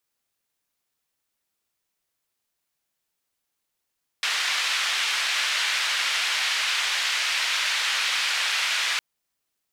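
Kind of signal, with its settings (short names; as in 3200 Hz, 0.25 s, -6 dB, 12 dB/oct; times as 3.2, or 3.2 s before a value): noise band 1700–3200 Hz, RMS -25 dBFS 4.76 s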